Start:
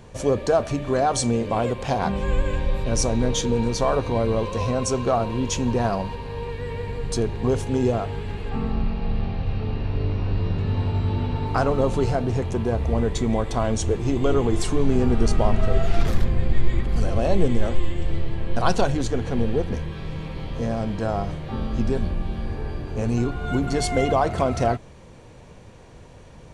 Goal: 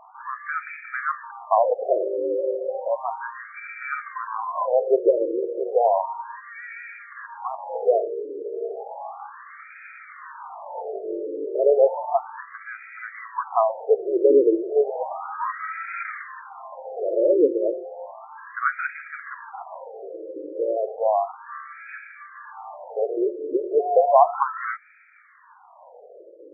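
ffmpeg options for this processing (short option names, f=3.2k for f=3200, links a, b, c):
-af "afftfilt=real='re*between(b*sr/1024,420*pow(1800/420,0.5+0.5*sin(2*PI*0.33*pts/sr))/1.41,420*pow(1800/420,0.5+0.5*sin(2*PI*0.33*pts/sr))*1.41)':imag='im*between(b*sr/1024,420*pow(1800/420,0.5+0.5*sin(2*PI*0.33*pts/sr))/1.41,420*pow(1800/420,0.5+0.5*sin(2*PI*0.33*pts/sr))*1.41)':win_size=1024:overlap=0.75,volume=7.5dB"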